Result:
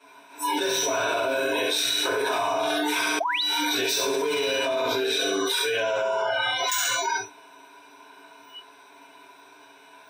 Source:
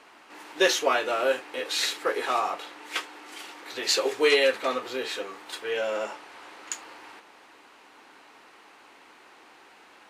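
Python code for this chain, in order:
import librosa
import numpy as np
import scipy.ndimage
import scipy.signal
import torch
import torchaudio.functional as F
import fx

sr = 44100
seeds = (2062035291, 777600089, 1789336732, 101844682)

y = fx.high_shelf(x, sr, hz=9200.0, db=5.5)
y = fx.echo_thinned(y, sr, ms=67, feedback_pct=43, hz=180.0, wet_db=-4)
y = np.clip(10.0 ** (20.5 / 20.0) * y, -1.0, 1.0) / 10.0 ** (20.5 / 20.0)
y = scipy.signal.sosfilt(scipy.signal.butter(4, 94.0, 'highpass', fs=sr, output='sos'), y)
y = fx.room_shoebox(y, sr, seeds[0], volume_m3=120.0, walls='furnished', distance_m=4.2)
y = fx.spec_paint(y, sr, seeds[1], shape='rise', start_s=3.2, length_s=0.23, low_hz=610.0, high_hz=4900.0, level_db=-9.0)
y = fx.comb_fb(y, sr, f0_hz=970.0, decay_s=0.35, harmonics='all', damping=0.0, mix_pct=90)
y = fx.noise_reduce_blind(y, sr, reduce_db=26)
y = fx.ripple_eq(y, sr, per_octave=1.6, db=14)
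y = fx.env_flatten(y, sr, amount_pct=100)
y = y * 10.0 ** (-7.5 / 20.0)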